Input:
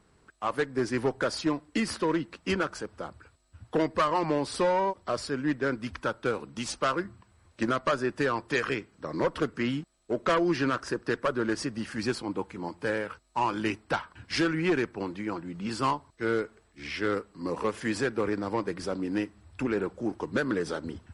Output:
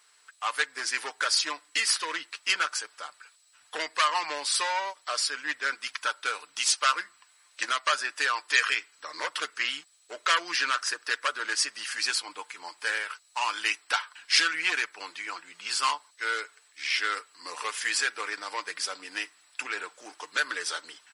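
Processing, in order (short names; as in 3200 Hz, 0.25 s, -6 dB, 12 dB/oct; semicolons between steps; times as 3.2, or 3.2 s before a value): Bessel high-pass 1900 Hz, order 2; tilt +1.5 dB/oct; comb 6.7 ms, depth 37%; gain +8 dB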